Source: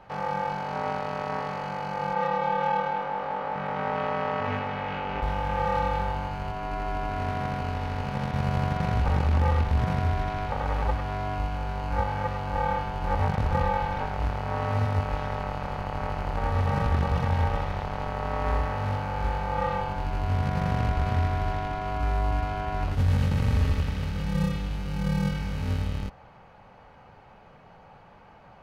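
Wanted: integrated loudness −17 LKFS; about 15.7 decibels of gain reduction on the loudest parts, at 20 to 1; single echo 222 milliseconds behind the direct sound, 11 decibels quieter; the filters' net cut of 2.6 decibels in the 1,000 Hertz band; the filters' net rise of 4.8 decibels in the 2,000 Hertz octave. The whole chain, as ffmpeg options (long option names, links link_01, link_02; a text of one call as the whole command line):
ffmpeg -i in.wav -af "equalizer=frequency=1000:width_type=o:gain=-5,equalizer=frequency=2000:width_type=o:gain=8,acompressor=threshold=-35dB:ratio=20,aecho=1:1:222:0.282,volume=23dB" out.wav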